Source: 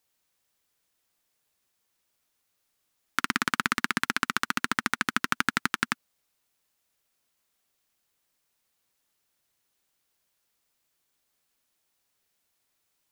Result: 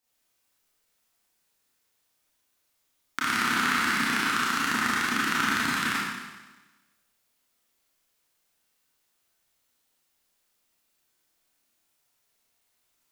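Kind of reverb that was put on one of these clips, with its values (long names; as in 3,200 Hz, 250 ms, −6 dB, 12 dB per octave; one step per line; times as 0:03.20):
four-comb reverb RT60 1.2 s, combs from 25 ms, DRR −8.5 dB
level −6 dB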